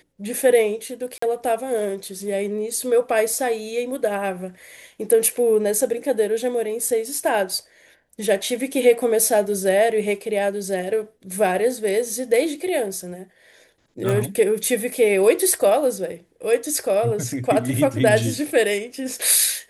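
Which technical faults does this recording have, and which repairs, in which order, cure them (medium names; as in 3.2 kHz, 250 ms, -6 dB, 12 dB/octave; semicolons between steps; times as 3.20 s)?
1.18–1.22 s: dropout 44 ms
14.09 s: pop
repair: de-click; interpolate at 1.18 s, 44 ms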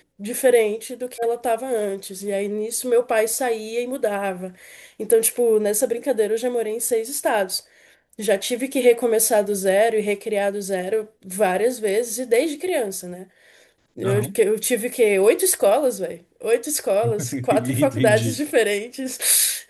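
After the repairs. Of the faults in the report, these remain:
nothing left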